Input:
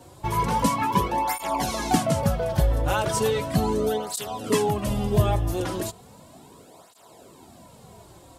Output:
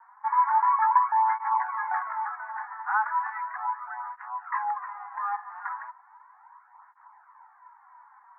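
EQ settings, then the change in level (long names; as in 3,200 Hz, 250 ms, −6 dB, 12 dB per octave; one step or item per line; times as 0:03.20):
Butterworth high-pass 840 Hz 96 dB per octave
Butterworth low-pass 1,900 Hz 72 dB per octave
high-frequency loss of the air 210 metres
+5.0 dB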